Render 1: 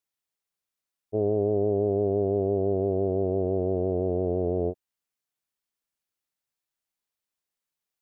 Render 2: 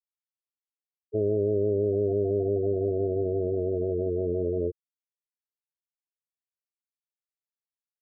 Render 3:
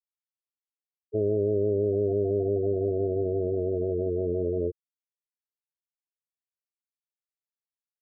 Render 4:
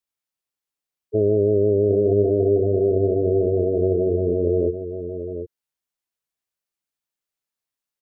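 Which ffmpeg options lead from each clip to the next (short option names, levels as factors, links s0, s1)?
-af "afftfilt=real='re*gte(hypot(re,im),0.158)':imag='im*gte(hypot(re,im),0.158)':win_size=1024:overlap=0.75"
-af anull
-af "aecho=1:1:747:0.355,volume=2.24"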